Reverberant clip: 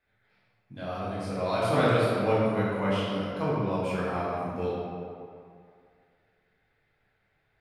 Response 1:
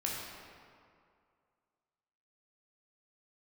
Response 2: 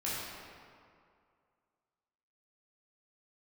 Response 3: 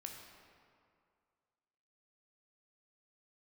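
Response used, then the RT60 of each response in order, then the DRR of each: 2; 2.3, 2.3, 2.2 seconds; −4.0, −9.0, 1.5 decibels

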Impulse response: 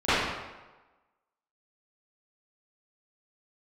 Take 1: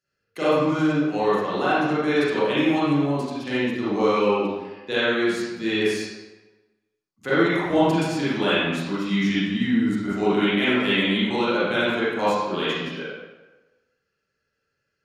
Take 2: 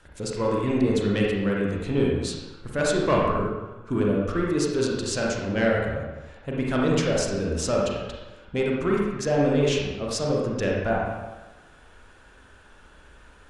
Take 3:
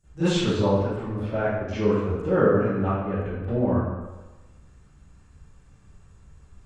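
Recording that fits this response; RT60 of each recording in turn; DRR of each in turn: 3; 1.2, 1.2, 1.2 seconds; −12.0, −3.5, −21.5 decibels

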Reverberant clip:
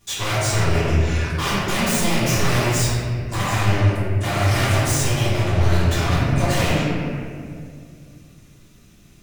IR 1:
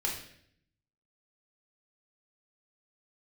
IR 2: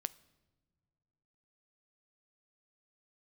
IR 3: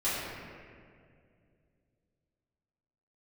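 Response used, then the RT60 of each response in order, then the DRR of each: 3; 0.65 s, non-exponential decay, 2.3 s; −3.5, 15.5, −13.5 decibels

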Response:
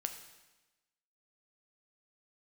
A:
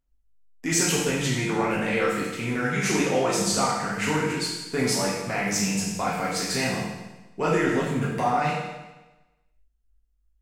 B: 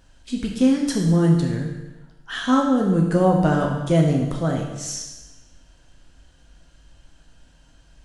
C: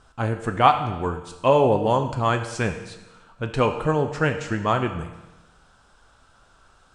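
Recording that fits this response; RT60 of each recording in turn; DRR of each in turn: C; 1.1, 1.1, 1.1 seconds; −7.0, −1.0, 6.0 decibels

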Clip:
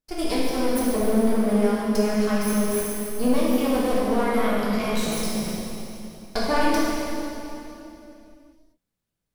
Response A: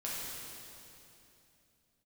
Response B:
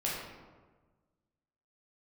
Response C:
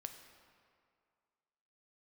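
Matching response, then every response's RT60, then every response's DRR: A; 2.9, 1.4, 2.2 seconds; −7.0, −6.0, 6.0 decibels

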